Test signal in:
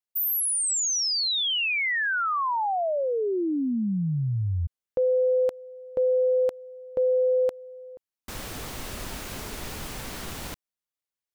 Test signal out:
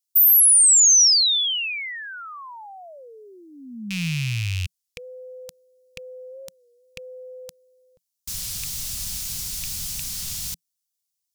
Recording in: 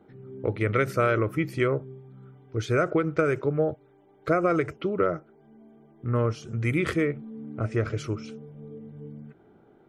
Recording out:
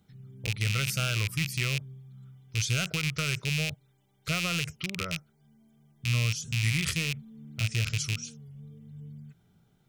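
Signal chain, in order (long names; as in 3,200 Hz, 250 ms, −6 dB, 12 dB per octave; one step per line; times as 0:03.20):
loose part that buzzes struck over −32 dBFS, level −18 dBFS
drawn EQ curve 170 Hz 0 dB, 320 Hz −21 dB, 1,700 Hz −9 dB, 5,400 Hz +12 dB
wow of a warped record 33 1/3 rpm, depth 100 cents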